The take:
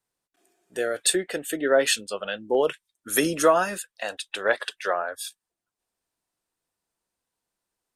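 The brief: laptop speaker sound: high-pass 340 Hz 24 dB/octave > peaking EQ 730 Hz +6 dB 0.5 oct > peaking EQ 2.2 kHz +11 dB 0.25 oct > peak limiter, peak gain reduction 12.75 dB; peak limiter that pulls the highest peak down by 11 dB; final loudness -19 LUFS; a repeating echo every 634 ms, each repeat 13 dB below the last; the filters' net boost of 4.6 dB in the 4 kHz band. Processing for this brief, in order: peaking EQ 4 kHz +5 dB; peak limiter -16.5 dBFS; high-pass 340 Hz 24 dB/octave; peaking EQ 730 Hz +6 dB 0.5 oct; peaking EQ 2.2 kHz +11 dB 0.25 oct; feedback delay 634 ms, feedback 22%, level -13 dB; trim +16 dB; peak limiter -9.5 dBFS

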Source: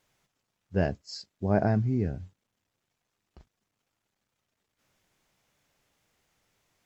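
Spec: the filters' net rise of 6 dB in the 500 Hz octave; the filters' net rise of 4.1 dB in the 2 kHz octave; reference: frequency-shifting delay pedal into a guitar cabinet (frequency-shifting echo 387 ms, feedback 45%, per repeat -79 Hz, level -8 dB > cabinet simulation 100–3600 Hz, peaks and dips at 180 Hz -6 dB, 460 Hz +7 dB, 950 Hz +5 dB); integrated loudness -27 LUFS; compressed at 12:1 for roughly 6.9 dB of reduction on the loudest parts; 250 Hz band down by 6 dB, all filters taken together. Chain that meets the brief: peaking EQ 250 Hz -7 dB; peaking EQ 500 Hz +5.5 dB; peaking EQ 2 kHz +5 dB; compression 12:1, threshold -25 dBFS; frequency-shifting echo 387 ms, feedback 45%, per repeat -79 Hz, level -8 dB; cabinet simulation 100–3600 Hz, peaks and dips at 180 Hz -6 dB, 460 Hz +7 dB, 950 Hz +5 dB; trim +6 dB

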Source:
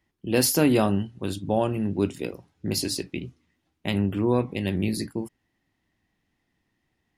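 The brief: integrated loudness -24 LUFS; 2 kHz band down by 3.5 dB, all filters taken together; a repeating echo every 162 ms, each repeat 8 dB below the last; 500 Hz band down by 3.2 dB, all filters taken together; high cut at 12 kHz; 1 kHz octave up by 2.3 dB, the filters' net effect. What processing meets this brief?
low-pass 12 kHz; peaking EQ 500 Hz -5.5 dB; peaking EQ 1 kHz +6.5 dB; peaking EQ 2 kHz -6.5 dB; feedback delay 162 ms, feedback 40%, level -8 dB; trim +2.5 dB

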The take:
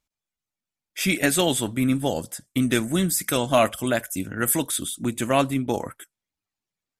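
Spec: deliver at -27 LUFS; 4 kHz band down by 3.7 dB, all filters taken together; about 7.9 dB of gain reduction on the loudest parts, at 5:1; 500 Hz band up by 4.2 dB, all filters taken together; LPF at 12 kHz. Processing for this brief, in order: low-pass 12 kHz; peaking EQ 500 Hz +5.5 dB; peaking EQ 4 kHz -5 dB; compression 5:1, threshold -19 dBFS; trim -1.5 dB

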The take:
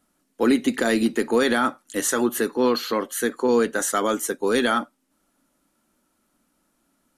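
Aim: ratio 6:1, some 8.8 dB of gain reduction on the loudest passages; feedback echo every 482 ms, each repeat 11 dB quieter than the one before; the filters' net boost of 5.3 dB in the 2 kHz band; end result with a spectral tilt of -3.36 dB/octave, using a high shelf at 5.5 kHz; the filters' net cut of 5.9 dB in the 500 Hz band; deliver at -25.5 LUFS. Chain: peaking EQ 500 Hz -7.5 dB; peaking EQ 2 kHz +8 dB; treble shelf 5.5 kHz -4 dB; compression 6:1, threshold -25 dBFS; feedback delay 482 ms, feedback 28%, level -11 dB; trim +4 dB

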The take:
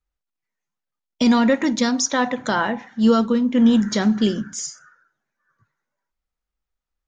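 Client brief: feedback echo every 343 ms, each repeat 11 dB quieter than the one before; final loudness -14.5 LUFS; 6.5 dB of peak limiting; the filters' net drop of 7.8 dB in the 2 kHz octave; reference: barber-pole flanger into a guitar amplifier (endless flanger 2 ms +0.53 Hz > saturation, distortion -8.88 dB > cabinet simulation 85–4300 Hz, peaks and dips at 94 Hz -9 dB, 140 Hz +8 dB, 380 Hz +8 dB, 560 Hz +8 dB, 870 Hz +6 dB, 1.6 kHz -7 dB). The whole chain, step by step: peaking EQ 2 kHz -5 dB; peak limiter -13 dBFS; feedback delay 343 ms, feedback 28%, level -11 dB; endless flanger 2 ms +0.53 Hz; saturation -25 dBFS; cabinet simulation 85–4300 Hz, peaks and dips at 94 Hz -9 dB, 140 Hz +8 dB, 380 Hz +8 dB, 560 Hz +8 dB, 870 Hz +6 dB, 1.6 kHz -7 dB; trim +14 dB

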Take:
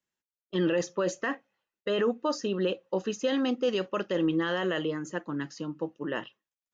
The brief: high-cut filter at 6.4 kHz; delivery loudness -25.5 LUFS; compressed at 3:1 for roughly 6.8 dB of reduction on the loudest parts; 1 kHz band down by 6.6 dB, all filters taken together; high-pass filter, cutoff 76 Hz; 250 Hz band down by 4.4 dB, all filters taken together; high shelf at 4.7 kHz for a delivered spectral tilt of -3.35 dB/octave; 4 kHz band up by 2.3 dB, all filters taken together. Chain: high-pass 76 Hz; low-pass 6.4 kHz; peaking EQ 250 Hz -5.5 dB; peaking EQ 1 kHz -8.5 dB; peaking EQ 4 kHz +6.5 dB; treble shelf 4.7 kHz -3.5 dB; compression 3:1, threshold -35 dBFS; trim +13 dB

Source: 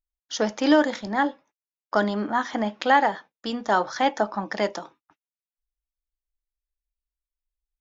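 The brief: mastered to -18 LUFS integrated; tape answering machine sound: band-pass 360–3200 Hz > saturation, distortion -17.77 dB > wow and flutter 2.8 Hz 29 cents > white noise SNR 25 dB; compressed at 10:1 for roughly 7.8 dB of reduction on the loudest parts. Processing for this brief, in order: compression 10:1, threshold -20 dBFS; band-pass 360–3200 Hz; saturation -18 dBFS; wow and flutter 2.8 Hz 29 cents; white noise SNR 25 dB; trim +13 dB

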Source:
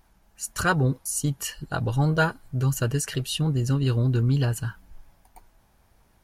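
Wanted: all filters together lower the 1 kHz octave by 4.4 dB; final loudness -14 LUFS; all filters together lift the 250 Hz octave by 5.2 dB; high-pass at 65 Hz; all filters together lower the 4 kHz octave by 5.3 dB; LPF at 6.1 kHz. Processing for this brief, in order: high-pass 65 Hz; low-pass 6.1 kHz; peaking EQ 250 Hz +8 dB; peaking EQ 1 kHz -6.5 dB; peaking EQ 4 kHz -6.5 dB; trim +9.5 dB

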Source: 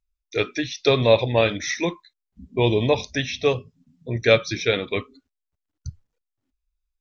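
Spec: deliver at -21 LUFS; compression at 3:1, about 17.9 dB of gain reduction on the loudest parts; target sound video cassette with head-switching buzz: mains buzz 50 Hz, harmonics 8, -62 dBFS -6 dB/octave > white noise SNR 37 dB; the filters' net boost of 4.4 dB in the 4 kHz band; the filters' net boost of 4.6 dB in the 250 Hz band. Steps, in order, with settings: peaking EQ 250 Hz +6 dB; peaking EQ 4 kHz +5 dB; compression 3:1, threshold -35 dBFS; mains buzz 50 Hz, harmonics 8, -62 dBFS -6 dB/octave; white noise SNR 37 dB; trim +14 dB

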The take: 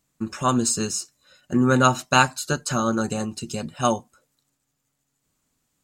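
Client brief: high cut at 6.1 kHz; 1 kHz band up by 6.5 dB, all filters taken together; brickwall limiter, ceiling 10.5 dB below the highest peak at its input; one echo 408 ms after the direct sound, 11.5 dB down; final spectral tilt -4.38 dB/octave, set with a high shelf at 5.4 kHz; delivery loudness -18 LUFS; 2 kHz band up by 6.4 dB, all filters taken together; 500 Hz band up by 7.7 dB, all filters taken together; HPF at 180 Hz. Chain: high-pass 180 Hz; low-pass 6.1 kHz; peaking EQ 500 Hz +8 dB; peaking EQ 1 kHz +4 dB; peaking EQ 2 kHz +7.5 dB; treble shelf 5.4 kHz -3 dB; peak limiter -7.5 dBFS; delay 408 ms -11.5 dB; trim +4 dB

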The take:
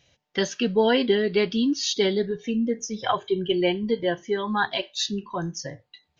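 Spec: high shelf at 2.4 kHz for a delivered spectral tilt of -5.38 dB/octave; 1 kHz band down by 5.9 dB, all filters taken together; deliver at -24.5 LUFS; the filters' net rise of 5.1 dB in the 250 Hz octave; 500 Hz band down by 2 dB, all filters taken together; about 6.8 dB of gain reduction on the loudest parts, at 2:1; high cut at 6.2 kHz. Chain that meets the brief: low-pass 6.2 kHz; peaking EQ 250 Hz +7.5 dB; peaking EQ 500 Hz -4.5 dB; peaking EQ 1 kHz -6 dB; treble shelf 2.4 kHz -3.5 dB; compression 2:1, threshold -27 dBFS; trim +4 dB

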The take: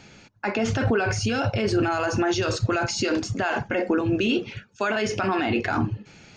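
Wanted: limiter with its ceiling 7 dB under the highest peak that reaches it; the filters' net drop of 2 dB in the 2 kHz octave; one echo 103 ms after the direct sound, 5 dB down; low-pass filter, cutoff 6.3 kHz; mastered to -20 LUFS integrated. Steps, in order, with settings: low-pass 6.3 kHz; peaking EQ 2 kHz -3 dB; peak limiter -19 dBFS; delay 103 ms -5 dB; trim +7.5 dB

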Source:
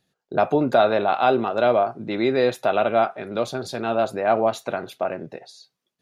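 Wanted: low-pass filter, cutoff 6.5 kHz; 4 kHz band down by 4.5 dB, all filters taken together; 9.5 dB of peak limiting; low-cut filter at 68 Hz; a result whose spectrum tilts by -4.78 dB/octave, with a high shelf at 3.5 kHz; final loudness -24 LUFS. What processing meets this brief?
high-pass 68 Hz; low-pass 6.5 kHz; treble shelf 3.5 kHz +7 dB; peaking EQ 4 kHz -9 dB; trim +3 dB; peak limiter -13 dBFS

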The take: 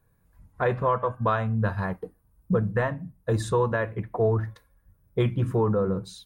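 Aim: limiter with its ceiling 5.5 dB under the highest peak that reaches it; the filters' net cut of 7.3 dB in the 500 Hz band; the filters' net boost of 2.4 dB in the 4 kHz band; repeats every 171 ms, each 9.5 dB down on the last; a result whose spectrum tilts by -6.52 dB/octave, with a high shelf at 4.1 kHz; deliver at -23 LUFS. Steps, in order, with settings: peaking EQ 500 Hz -8.5 dB; peaking EQ 4 kHz +5.5 dB; treble shelf 4.1 kHz -5 dB; peak limiter -20.5 dBFS; feedback delay 171 ms, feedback 33%, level -9.5 dB; trim +7.5 dB

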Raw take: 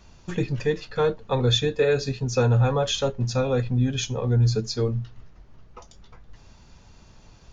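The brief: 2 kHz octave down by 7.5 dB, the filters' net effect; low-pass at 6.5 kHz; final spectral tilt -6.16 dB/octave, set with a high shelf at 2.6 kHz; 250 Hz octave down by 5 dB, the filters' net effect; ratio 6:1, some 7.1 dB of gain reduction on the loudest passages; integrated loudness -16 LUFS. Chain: low-pass 6.5 kHz; peaking EQ 250 Hz -7 dB; peaking EQ 2 kHz -8 dB; treble shelf 2.6 kHz -5 dB; compression 6:1, threshold -25 dBFS; trim +15 dB

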